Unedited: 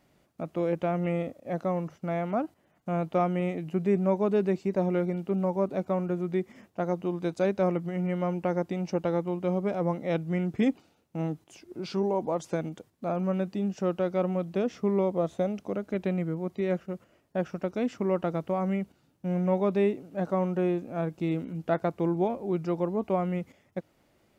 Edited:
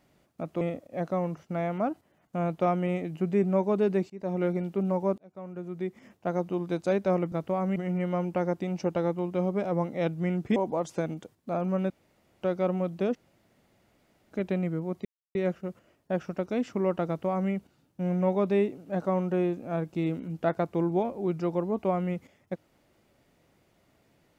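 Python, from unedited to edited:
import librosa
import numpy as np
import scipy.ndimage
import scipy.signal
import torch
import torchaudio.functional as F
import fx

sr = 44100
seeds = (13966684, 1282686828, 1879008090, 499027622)

y = fx.edit(x, sr, fx.cut(start_s=0.61, length_s=0.53),
    fx.fade_in_from(start_s=4.63, length_s=0.35, floor_db=-23.5),
    fx.fade_in_span(start_s=5.71, length_s=1.09),
    fx.cut(start_s=10.65, length_s=1.46),
    fx.room_tone_fill(start_s=13.45, length_s=0.52),
    fx.room_tone_fill(start_s=14.7, length_s=1.16),
    fx.insert_silence(at_s=16.6, length_s=0.3),
    fx.duplicate(start_s=18.32, length_s=0.44, to_s=7.85), tone=tone)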